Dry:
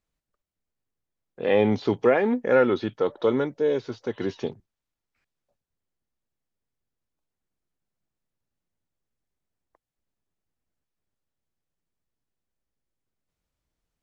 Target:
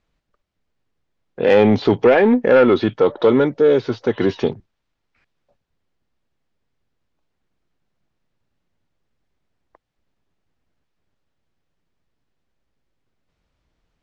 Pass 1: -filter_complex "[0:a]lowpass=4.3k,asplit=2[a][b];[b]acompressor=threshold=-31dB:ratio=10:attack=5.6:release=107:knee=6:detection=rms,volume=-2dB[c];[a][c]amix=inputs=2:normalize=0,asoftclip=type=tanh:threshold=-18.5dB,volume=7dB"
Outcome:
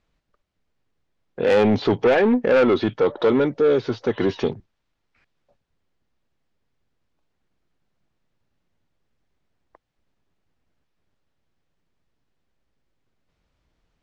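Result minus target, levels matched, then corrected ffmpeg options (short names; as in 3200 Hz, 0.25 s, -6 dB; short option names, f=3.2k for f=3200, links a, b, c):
compressor: peak gain reduction +9 dB; soft clip: distortion +6 dB
-filter_complex "[0:a]lowpass=4.3k,asplit=2[a][b];[b]acompressor=threshold=-21dB:ratio=10:attack=5.6:release=107:knee=6:detection=rms,volume=-2dB[c];[a][c]amix=inputs=2:normalize=0,asoftclip=type=tanh:threshold=-11.5dB,volume=7dB"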